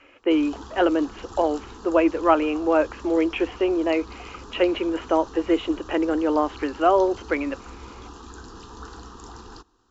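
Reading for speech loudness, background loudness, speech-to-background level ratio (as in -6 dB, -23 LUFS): -23.0 LUFS, -42.0 LUFS, 19.0 dB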